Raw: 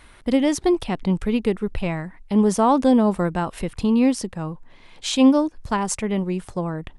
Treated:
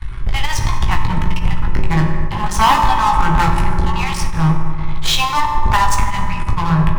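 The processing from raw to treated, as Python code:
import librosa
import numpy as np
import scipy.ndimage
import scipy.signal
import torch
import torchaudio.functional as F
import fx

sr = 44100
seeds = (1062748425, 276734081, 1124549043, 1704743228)

y = scipy.signal.sosfilt(scipy.signal.cheby1(5, 1.0, [150.0, 840.0], 'bandstop', fs=sr, output='sos'), x)
y = fx.riaa(y, sr, side='playback')
y = fx.hum_notches(y, sr, base_hz=60, count=3)
y = fx.dynamic_eq(y, sr, hz=3900.0, q=1.2, threshold_db=-42.0, ratio=4.0, max_db=4)
y = fx.leveller(y, sr, passes=3)
y = 10.0 ** (-15.5 / 20.0) * np.tanh(y / 10.0 ** (-15.5 / 20.0))
y = fx.doubler(y, sr, ms=18.0, db=-6)
y = fx.rev_fdn(y, sr, rt60_s=3.1, lf_ratio=1.0, hf_ratio=0.35, size_ms=16.0, drr_db=2.0)
y = fx.end_taper(y, sr, db_per_s=110.0)
y = y * 10.0 ** (5.5 / 20.0)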